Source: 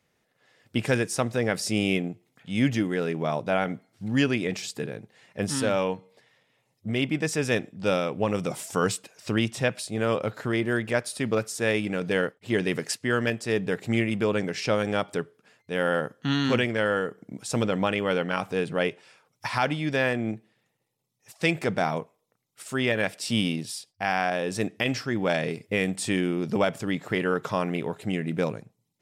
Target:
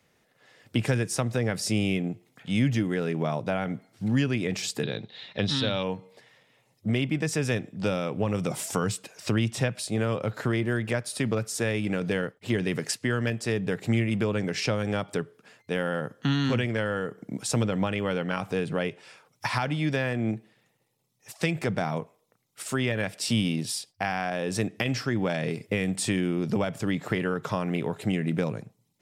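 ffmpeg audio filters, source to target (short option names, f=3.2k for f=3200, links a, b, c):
-filter_complex "[0:a]asettb=1/sr,asplit=3[a][b][c];[a]atrim=end=4.834[d];[b]atrim=start=4.83:end=5.83,asetpts=PTS-STARTPTS,afade=t=in:d=0.004:c=qsin,afade=t=out:st=0.996:d=0.004:c=qsin,lowpass=f=3.8k:t=q:w=12[e];[c]atrim=start=5.826[f];[d][e]acrossfade=d=0.004:c1=hsin:c2=qsin[g];[g][f]acrossfade=d=0.004:c1=qsin:c2=hsin,acrossover=split=160[h][i];[i]acompressor=threshold=-31dB:ratio=5[j];[h][j]amix=inputs=2:normalize=0,volume=5dB"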